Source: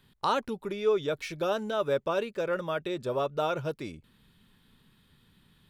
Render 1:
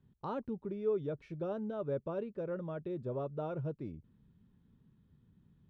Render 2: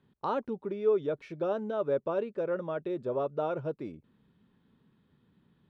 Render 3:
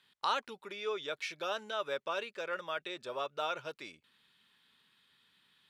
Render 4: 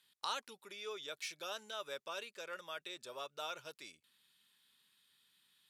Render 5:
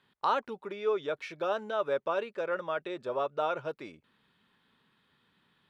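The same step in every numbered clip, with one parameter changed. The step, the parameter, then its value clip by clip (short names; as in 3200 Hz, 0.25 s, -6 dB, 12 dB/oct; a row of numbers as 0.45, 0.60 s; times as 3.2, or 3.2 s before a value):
band-pass, frequency: 110, 330, 2900, 7700, 1100 Hz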